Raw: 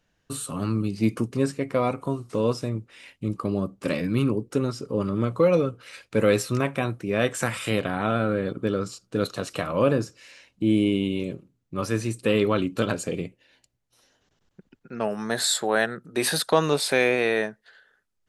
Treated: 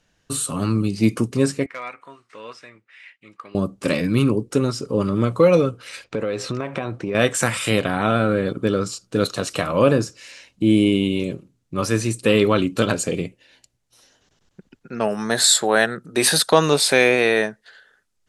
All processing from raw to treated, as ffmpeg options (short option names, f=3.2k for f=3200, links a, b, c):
-filter_complex "[0:a]asettb=1/sr,asplit=3[a][b][c];[a]atrim=end=1.664[d];[b]atrim=start=1.66:end=3.55,asetpts=PTS-STARTPTS,afade=t=in:d=0.004:c=qsin,afade=t=out:st=1.886:d=0.004:c=qsin,bandpass=f=1.9k:t=q:w=2.7,asoftclip=type=hard:threshold=-29.5dB[e];[c]atrim=start=3.546[f];[d][e]acrossfade=d=0.004:c1=hsin:c2=qsin[g];[g][f]acrossfade=d=0.004:c1=qsin:c2=hsin,asettb=1/sr,asplit=3[h][i][j];[h]atrim=end=6.044[k];[i]atrim=start=6.04:end=7.15,asetpts=PTS-STARTPTS,afade=t=in:d=0.004:c=qsin,afade=t=out:st=1.106:d=0.004:c=qsin,lowpass=5.1k,equalizer=f=600:w=0.51:g=6,acompressor=threshold=-26dB:ratio=8:attack=3.2:release=140:knee=1:detection=peak[l];[j]atrim=start=7.146[m];[k][l]acrossfade=d=0.004:c1=hsin:c2=qsin[n];[n][m]acrossfade=d=0.004:c1=qsin:c2=hsin,lowpass=10k,highshelf=f=4.9k:g=7.5,volume=5dB"